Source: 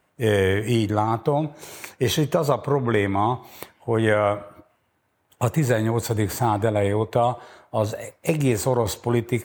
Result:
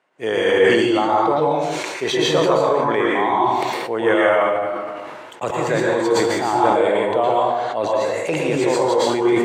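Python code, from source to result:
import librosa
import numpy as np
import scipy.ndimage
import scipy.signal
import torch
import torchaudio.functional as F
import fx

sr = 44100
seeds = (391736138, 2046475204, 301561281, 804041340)

y = fx.bandpass_edges(x, sr, low_hz=340.0, high_hz=5100.0)
y = fx.rev_plate(y, sr, seeds[0], rt60_s=0.8, hf_ratio=0.85, predelay_ms=100, drr_db=-4.0)
y = fx.sustainer(y, sr, db_per_s=26.0)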